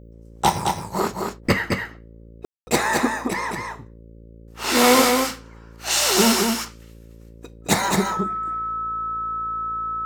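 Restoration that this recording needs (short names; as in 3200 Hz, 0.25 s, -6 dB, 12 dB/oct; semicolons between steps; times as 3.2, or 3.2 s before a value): de-hum 56.4 Hz, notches 10; notch 1300 Hz, Q 30; room tone fill 2.45–2.67; inverse comb 0.217 s -4.5 dB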